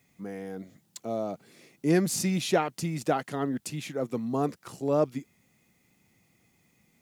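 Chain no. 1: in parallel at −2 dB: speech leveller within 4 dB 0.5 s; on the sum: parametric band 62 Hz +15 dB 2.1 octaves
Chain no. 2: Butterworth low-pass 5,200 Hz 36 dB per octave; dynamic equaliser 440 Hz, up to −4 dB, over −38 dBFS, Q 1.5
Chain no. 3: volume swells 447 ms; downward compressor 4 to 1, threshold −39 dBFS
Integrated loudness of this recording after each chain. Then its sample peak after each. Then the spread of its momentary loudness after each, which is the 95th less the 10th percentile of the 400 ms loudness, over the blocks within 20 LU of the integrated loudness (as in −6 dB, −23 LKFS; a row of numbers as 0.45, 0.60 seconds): −22.5, −31.5, −43.5 LKFS; −4.0, −13.0, −27.5 dBFS; 13, 14, 12 LU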